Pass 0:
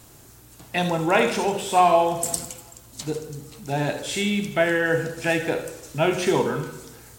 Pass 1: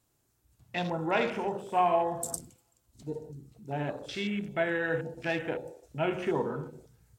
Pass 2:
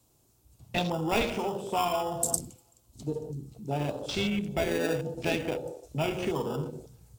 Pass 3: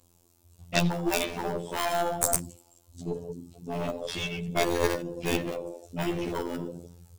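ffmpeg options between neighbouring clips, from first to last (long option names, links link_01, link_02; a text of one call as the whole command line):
ffmpeg -i in.wav -af "afwtdn=0.0251,volume=-8.5dB" out.wav
ffmpeg -i in.wav -filter_complex "[0:a]acrossover=split=110|1300|2400[link_01][link_02][link_03][link_04];[link_02]acompressor=threshold=-36dB:ratio=6[link_05];[link_03]acrusher=samples=21:mix=1:aa=0.000001[link_06];[link_01][link_05][link_06][link_04]amix=inputs=4:normalize=0,volume=7.5dB" out.wav
ffmpeg -i in.wav -af "aphaser=in_gain=1:out_gain=1:delay=3.4:decay=0.37:speed=1.3:type=sinusoidal,afftfilt=real='hypot(re,im)*cos(PI*b)':imag='0':win_size=2048:overlap=0.75,aeval=exprs='0.531*(cos(1*acos(clip(val(0)/0.531,-1,1)))-cos(1*PI/2))+0.0841*(cos(8*acos(clip(val(0)/0.531,-1,1)))-cos(8*PI/2))':channel_layout=same,volume=5.5dB" out.wav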